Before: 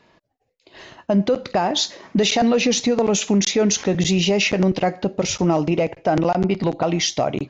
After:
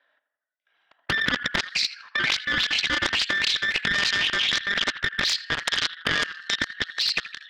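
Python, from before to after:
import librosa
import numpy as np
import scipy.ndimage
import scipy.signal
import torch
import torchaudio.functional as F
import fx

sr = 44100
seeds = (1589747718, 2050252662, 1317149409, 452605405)

p1 = fx.band_invert(x, sr, width_hz=2000)
p2 = fx.sample_hold(p1, sr, seeds[0], rate_hz=1200.0, jitter_pct=0)
p3 = p1 + (p2 * librosa.db_to_amplitude(-11.0))
p4 = fx.tilt_shelf(p3, sr, db=-8.5, hz=770.0)
p5 = fx.over_compress(p4, sr, threshold_db=-15.0, ratio=-0.5)
p6 = fx.auto_wah(p5, sr, base_hz=580.0, top_hz=4800.0, q=6.0, full_db=-11.0, direction='up')
p7 = np.clip(p6, -10.0 ** (-17.0 / 20.0), 10.0 ** (-17.0 / 20.0))
p8 = fx.band_shelf(p7, sr, hz=2600.0, db=12.5, octaves=1.7)
p9 = fx.level_steps(p8, sr, step_db=23)
p10 = p9 + fx.echo_tape(p9, sr, ms=82, feedback_pct=59, wet_db=-11.0, lp_hz=2600.0, drive_db=8.0, wow_cents=36, dry=0)
y = fx.doppler_dist(p10, sr, depth_ms=0.68)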